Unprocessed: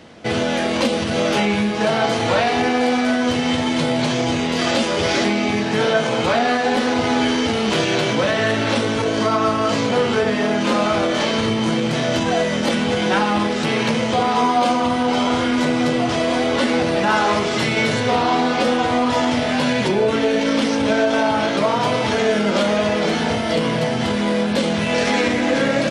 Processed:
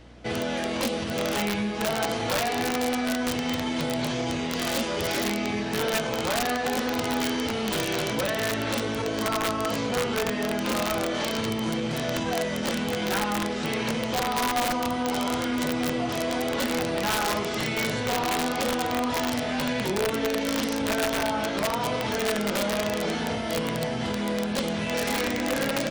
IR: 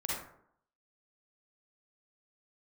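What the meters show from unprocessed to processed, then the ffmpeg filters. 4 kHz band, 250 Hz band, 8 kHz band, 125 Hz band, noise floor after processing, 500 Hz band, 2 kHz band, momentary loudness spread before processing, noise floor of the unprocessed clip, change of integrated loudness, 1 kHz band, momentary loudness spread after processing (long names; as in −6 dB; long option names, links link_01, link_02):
−7.0 dB, −9.0 dB, −2.0 dB, −8.5 dB, −30 dBFS, −9.0 dB, −8.0 dB, 2 LU, −21 dBFS, −8.0 dB, −9.0 dB, 2 LU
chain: -af "aeval=exprs='val(0)+0.00891*(sin(2*PI*60*n/s)+sin(2*PI*2*60*n/s)/2+sin(2*PI*3*60*n/s)/3+sin(2*PI*4*60*n/s)/4+sin(2*PI*5*60*n/s)/5)':channel_layout=same,aeval=exprs='(mod(2.99*val(0)+1,2)-1)/2.99':channel_layout=same,volume=-8.5dB"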